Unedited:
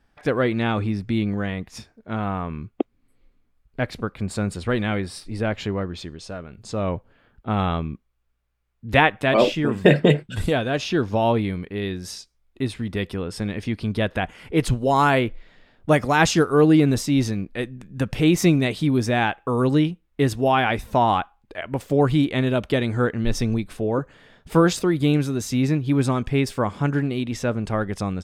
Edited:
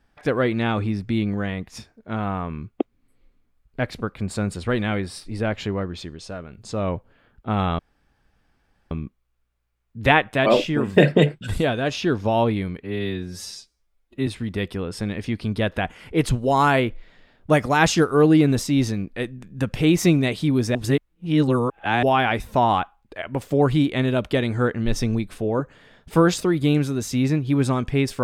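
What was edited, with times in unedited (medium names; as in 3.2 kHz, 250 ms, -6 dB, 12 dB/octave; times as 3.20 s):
7.79 s: insert room tone 1.12 s
11.68–12.66 s: stretch 1.5×
19.14–20.42 s: reverse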